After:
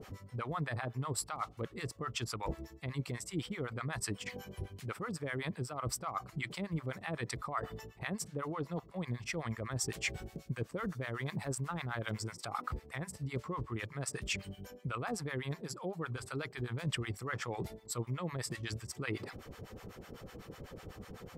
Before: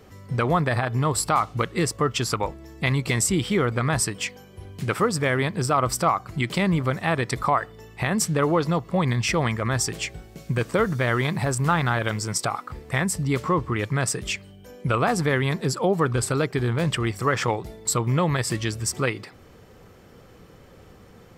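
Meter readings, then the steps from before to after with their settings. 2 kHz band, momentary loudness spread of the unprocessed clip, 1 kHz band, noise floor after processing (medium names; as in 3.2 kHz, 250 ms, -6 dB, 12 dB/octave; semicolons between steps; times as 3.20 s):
-14.5 dB, 7 LU, -16.5 dB, -57 dBFS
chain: reverse; compression 16:1, threshold -35 dBFS, peak gain reduction 20 dB; reverse; harmonic tremolo 8 Hz, depth 100%, crossover 690 Hz; trim +4.5 dB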